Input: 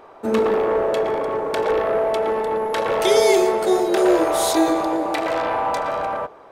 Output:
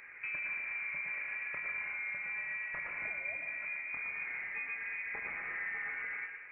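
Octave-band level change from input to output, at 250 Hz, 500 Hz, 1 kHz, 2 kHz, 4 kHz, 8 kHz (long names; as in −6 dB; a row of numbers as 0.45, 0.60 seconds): below −40 dB, below −40 dB, −30.0 dB, −3.5 dB, below −35 dB, below −40 dB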